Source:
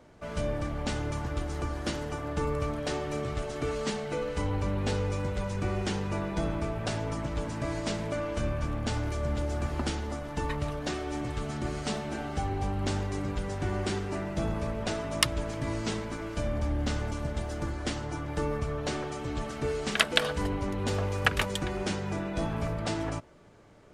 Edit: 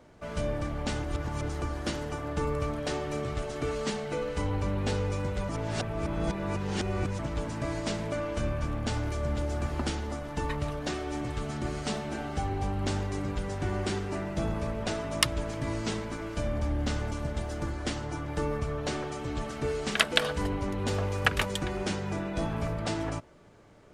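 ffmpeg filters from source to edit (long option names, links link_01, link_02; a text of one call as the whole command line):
ffmpeg -i in.wav -filter_complex "[0:a]asplit=5[link_01][link_02][link_03][link_04][link_05];[link_01]atrim=end=1.042[link_06];[link_02]atrim=start=1.038:end=1.492,asetpts=PTS-STARTPTS,areverse[link_07];[link_03]atrim=start=1.488:end=5.492[link_08];[link_04]atrim=start=5.488:end=7.192,asetpts=PTS-STARTPTS,areverse[link_09];[link_05]atrim=start=7.188[link_10];[link_06][link_07]acrossfade=duration=0.004:curve1=hsin:curve2=hsin[link_11];[link_11][link_08]acrossfade=duration=0.004:curve1=hsin:curve2=hsin[link_12];[link_12][link_09]acrossfade=duration=0.004:curve1=hsin:curve2=hsin[link_13];[link_13][link_10]acrossfade=duration=0.004:curve1=hsin:curve2=hsin" out.wav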